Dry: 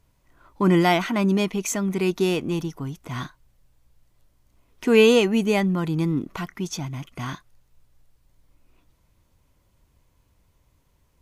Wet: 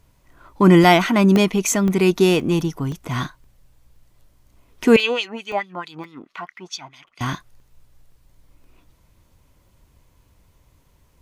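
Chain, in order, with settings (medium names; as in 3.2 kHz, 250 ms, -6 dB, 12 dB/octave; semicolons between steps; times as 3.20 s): 4.96–7.21 s: LFO band-pass sine 4.6 Hz 760–4400 Hz; crackling interface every 0.52 s, samples 64, zero, from 0.32 s; trim +6.5 dB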